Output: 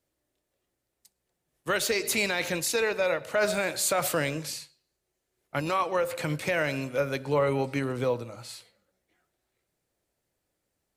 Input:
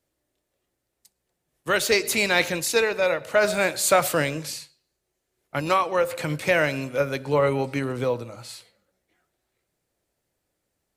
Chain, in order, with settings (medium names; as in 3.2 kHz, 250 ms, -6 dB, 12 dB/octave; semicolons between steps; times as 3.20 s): peak limiter -13 dBFS, peak gain reduction 8.5 dB; trim -2.5 dB